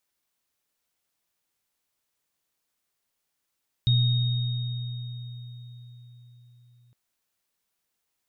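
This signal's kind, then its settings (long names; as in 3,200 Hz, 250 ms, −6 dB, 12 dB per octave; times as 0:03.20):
inharmonic partials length 3.06 s, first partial 121 Hz, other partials 3,730 Hz, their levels −7 dB, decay 4.73 s, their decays 3.41 s, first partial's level −17.5 dB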